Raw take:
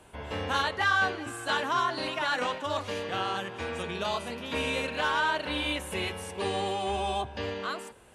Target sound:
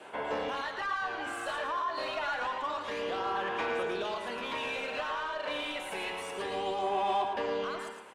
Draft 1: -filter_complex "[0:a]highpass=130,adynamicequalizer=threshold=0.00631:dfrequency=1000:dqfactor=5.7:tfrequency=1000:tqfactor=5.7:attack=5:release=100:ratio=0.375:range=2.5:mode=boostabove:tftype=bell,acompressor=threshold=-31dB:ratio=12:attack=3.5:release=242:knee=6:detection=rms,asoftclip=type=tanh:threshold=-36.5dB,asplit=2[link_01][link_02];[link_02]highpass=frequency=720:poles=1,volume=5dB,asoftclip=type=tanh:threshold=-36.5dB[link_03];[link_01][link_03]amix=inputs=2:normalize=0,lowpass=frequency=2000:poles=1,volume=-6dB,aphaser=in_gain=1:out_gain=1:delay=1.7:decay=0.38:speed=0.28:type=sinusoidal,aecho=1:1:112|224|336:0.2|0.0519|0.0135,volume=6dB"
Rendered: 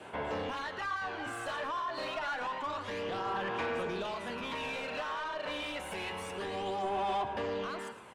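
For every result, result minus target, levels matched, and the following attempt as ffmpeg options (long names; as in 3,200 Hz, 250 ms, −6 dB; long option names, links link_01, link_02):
125 Hz band +8.5 dB; soft clipping: distortion +8 dB; echo-to-direct −7.5 dB
-filter_complex "[0:a]highpass=300,adynamicequalizer=threshold=0.00631:dfrequency=1000:dqfactor=5.7:tfrequency=1000:tqfactor=5.7:attack=5:release=100:ratio=0.375:range=2.5:mode=boostabove:tftype=bell,acompressor=threshold=-31dB:ratio=12:attack=3.5:release=242:knee=6:detection=rms,asoftclip=type=tanh:threshold=-36.5dB,asplit=2[link_01][link_02];[link_02]highpass=frequency=720:poles=1,volume=5dB,asoftclip=type=tanh:threshold=-36.5dB[link_03];[link_01][link_03]amix=inputs=2:normalize=0,lowpass=frequency=2000:poles=1,volume=-6dB,aphaser=in_gain=1:out_gain=1:delay=1.7:decay=0.38:speed=0.28:type=sinusoidal,aecho=1:1:112|224|336:0.2|0.0519|0.0135,volume=6dB"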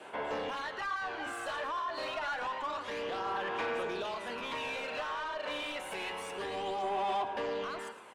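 soft clipping: distortion +8 dB; echo-to-direct −7.5 dB
-filter_complex "[0:a]highpass=300,adynamicequalizer=threshold=0.00631:dfrequency=1000:dqfactor=5.7:tfrequency=1000:tqfactor=5.7:attack=5:release=100:ratio=0.375:range=2.5:mode=boostabove:tftype=bell,acompressor=threshold=-31dB:ratio=12:attack=3.5:release=242:knee=6:detection=rms,asoftclip=type=tanh:threshold=-29.5dB,asplit=2[link_01][link_02];[link_02]highpass=frequency=720:poles=1,volume=5dB,asoftclip=type=tanh:threshold=-36.5dB[link_03];[link_01][link_03]amix=inputs=2:normalize=0,lowpass=frequency=2000:poles=1,volume=-6dB,aphaser=in_gain=1:out_gain=1:delay=1.7:decay=0.38:speed=0.28:type=sinusoidal,aecho=1:1:112|224|336:0.2|0.0519|0.0135,volume=6dB"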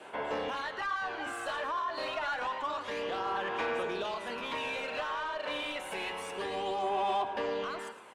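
echo-to-direct −7.5 dB
-filter_complex "[0:a]highpass=300,adynamicequalizer=threshold=0.00631:dfrequency=1000:dqfactor=5.7:tfrequency=1000:tqfactor=5.7:attack=5:release=100:ratio=0.375:range=2.5:mode=boostabove:tftype=bell,acompressor=threshold=-31dB:ratio=12:attack=3.5:release=242:knee=6:detection=rms,asoftclip=type=tanh:threshold=-29.5dB,asplit=2[link_01][link_02];[link_02]highpass=frequency=720:poles=1,volume=5dB,asoftclip=type=tanh:threshold=-36.5dB[link_03];[link_01][link_03]amix=inputs=2:normalize=0,lowpass=frequency=2000:poles=1,volume=-6dB,aphaser=in_gain=1:out_gain=1:delay=1.7:decay=0.38:speed=0.28:type=sinusoidal,aecho=1:1:112|224|336:0.473|0.123|0.032,volume=6dB"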